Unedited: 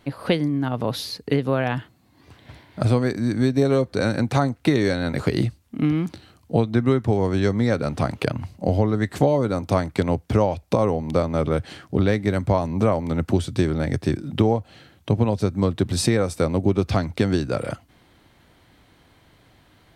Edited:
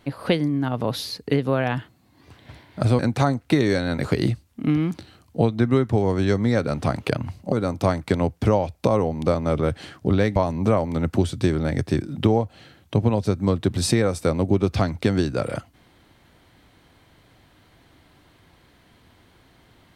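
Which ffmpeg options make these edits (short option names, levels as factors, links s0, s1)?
-filter_complex "[0:a]asplit=4[s0][s1][s2][s3];[s0]atrim=end=2.992[s4];[s1]atrim=start=4.138:end=8.672[s5];[s2]atrim=start=9.398:end=12.242[s6];[s3]atrim=start=12.508[s7];[s4][s5]acrossfade=d=0.004:c1=hsin:c2=hsin[s8];[s8][s6]acrossfade=d=0.004:c1=hsin:c2=hsin[s9];[s9][s7]acrossfade=d=0.004:c1=hsin:c2=hsin"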